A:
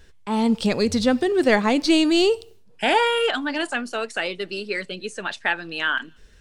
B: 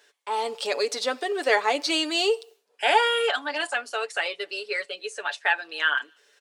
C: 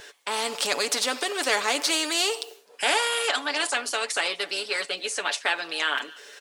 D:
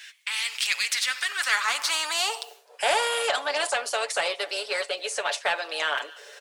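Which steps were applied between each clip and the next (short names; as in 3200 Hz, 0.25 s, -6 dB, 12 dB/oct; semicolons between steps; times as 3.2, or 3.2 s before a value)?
HPF 450 Hz 24 dB/oct; comb 7 ms, depth 57%; gain -2 dB
spectral compressor 2:1
high-pass sweep 2200 Hz -> 560 Hz, 0.81–2.91; in parallel at -7 dB: soft clip -21 dBFS, distortion -10 dB; on the sum: gain -4.5 dB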